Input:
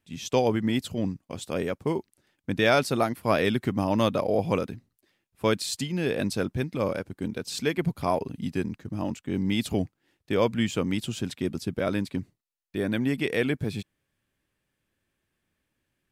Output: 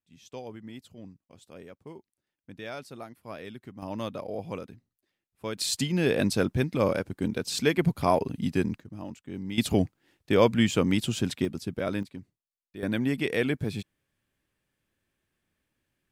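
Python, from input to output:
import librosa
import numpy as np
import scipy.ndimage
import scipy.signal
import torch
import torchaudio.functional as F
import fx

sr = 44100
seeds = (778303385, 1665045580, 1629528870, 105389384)

y = fx.gain(x, sr, db=fx.steps((0.0, -17.5), (3.82, -10.5), (5.58, 2.5), (8.8, -9.0), (9.58, 3.0), (11.45, -3.0), (12.03, -11.0), (12.83, -1.0)))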